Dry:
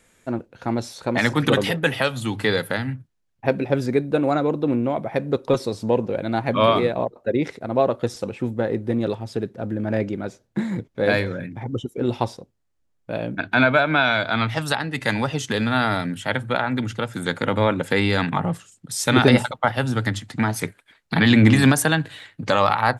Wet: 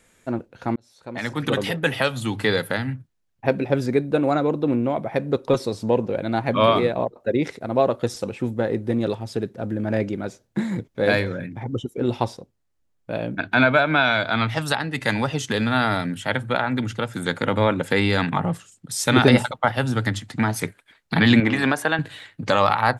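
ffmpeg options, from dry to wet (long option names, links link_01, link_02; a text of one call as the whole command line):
ffmpeg -i in.wav -filter_complex "[0:a]asettb=1/sr,asplit=3[link_01][link_02][link_03];[link_01]atrim=end=7.204[link_04];[link_02]atrim=start=7.2:end=11.15,asetpts=PTS-STARTPTS,afade=type=in:duration=0.004:curve=qsin,afade=type=out:start_time=3.946:duration=0.004:curve=qsin,highshelf=frequency=4600:gain=4[link_05];[link_03]atrim=start=11.146[link_06];[link_04][link_05]acrossfade=duration=0.004:curve1=hsin:curve2=qsin[link_07];[link_07][link_06]acrossfade=duration=0.004:curve1=qsin:curve2=hsin,asettb=1/sr,asplit=3[link_08][link_09][link_10];[link_08]atrim=end=21.404[link_11];[link_09]atrim=start=21.4:end=21.99,asetpts=PTS-STARTPTS,afade=type=in:duration=0.004:curve=qsin,afade=type=out:start_time=0.586:duration=0.004:curve=qsin,bass=frequency=250:gain=-14,treble=frequency=4000:gain=-13[link_12];[link_10]atrim=start=21.986[link_13];[link_11][link_12]acrossfade=duration=0.004:curve1=hsin:curve2=qsin[link_14];[link_14][link_13]acrossfade=duration=0.004:curve1=qsin:curve2=hsin,asplit=2[link_15][link_16];[link_15]atrim=end=0.76,asetpts=PTS-STARTPTS,afade=type=out:start_time=0.756:duration=0.004:curve=hsin[link_17];[link_16]atrim=start=0.76,asetpts=PTS-STARTPTS,afade=type=in:duration=1.25[link_18];[link_17][link_18]concat=n=2:v=0:a=1" out.wav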